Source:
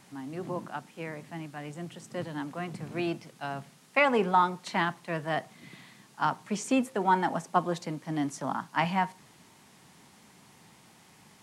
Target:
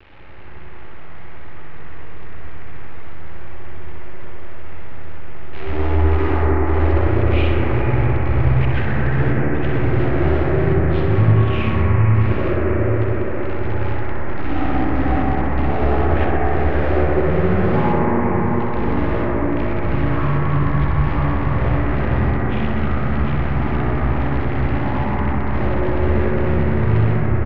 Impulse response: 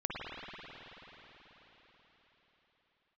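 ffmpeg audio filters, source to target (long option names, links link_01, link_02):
-filter_complex "[0:a]areverse,lowshelf=frequency=200:gain=10.5,bandreject=frequency=55.68:width_type=h:width=4,bandreject=frequency=111.36:width_type=h:width=4,bandreject=frequency=167.04:width_type=h:width=4,acompressor=threshold=-32dB:ratio=6,asoftclip=type=tanh:threshold=-30dB,acrusher=bits=8:dc=4:mix=0:aa=0.000001,lowpass=frequency=5800:width_type=q:width=1.9,asetrate=18346,aresample=44100,aecho=1:1:63|126|189|252|315|378|441|504:0.501|0.291|0.169|0.0978|0.0567|0.0329|0.0191|0.0111[link_01];[1:a]atrim=start_sample=2205,asetrate=23814,aresample=44100[link_02];[link_01][link_02]afir=irnorm=-1:irlink=0,volume=8.5dB"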